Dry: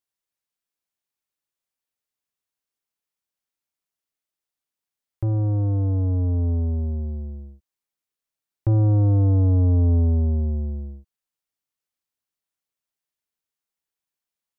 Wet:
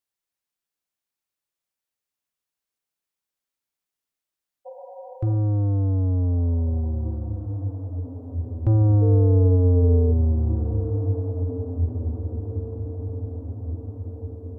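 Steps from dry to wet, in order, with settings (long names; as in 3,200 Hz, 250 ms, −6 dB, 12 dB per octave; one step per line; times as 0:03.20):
0:04.69–0:05.34: healed spectral selection 470–970 Hz after
0:09.01–0:10.11: steady tone 450 Hz −24 dBFS
on a send: feedback delay with all-pass diffusion 1,856 ms, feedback 54%, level −8.5 dB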